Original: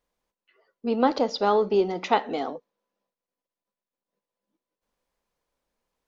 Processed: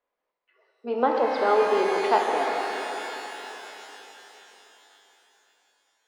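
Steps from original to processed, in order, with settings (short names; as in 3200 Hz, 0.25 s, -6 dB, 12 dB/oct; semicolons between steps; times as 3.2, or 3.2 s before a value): LPF 4800 Hz; three-band isolator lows -21 dB, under 320 Hz, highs -12 dB, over 2600 Hz; shimmer reverb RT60 3.9 s, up +12 st, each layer -8 dB, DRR 0 dB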